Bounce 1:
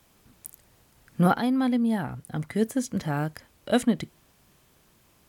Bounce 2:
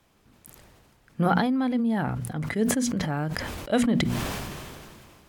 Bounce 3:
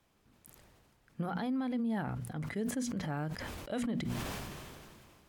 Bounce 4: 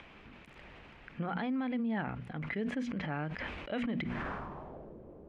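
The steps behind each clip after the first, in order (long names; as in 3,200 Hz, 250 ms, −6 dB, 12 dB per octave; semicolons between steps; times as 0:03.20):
low-pass filter 4,000 Hz 6 dB per octave; mains-hum notches 60/120/180/240 Hz; level that may fall only so fast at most 26 dB per second; level −1 dB
brickwall limiter −19.5 dBFS, peak gain reduction 10.5 dB; level −8 dB
parametric band 110 Hz −9 dB 0.38 octaves; upward compression, threshold −41 dBFS; low-pass filter sweep 2,500 Hz → 490 Hz, 0:03.99–0:04.94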